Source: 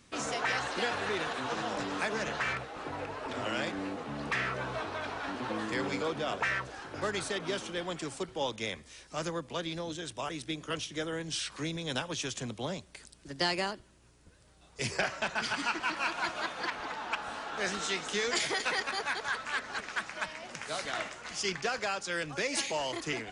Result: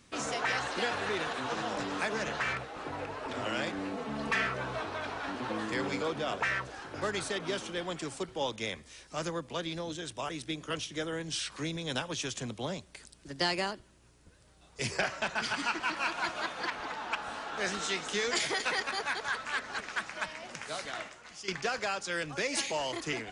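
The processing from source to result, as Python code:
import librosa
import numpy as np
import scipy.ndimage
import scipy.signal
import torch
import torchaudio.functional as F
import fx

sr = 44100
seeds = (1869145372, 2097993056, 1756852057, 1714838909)

y = fx.comb(x, sr, ms=4.5, depth=0.74, at=(3.93, 4.47))
y = fx.edit(y, sr, fx.fade_out_to(start_s=20.5, length_s=0.98, floor_db=-12.5), tone=tone)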